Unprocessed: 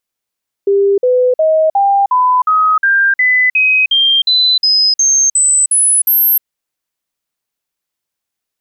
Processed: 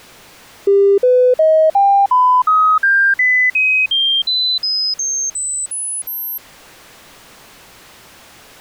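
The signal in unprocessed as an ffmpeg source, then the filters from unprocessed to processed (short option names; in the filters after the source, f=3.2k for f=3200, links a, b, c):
-f lavfi -i "aevalsrc='0.422*clip(min(mod(t,0.36),0.31-mod(t,0.36))/0.005,0,1)*sin(2*PI*398*pow(2,floor(t/0.36)/3)*mod(t,0.36))':d=5.76:s=44100"
-af "aeval=exprs='val(0)+0.5*0.0376*sgn(val(0))':c=same,lowpass=f=2.3k:p=1"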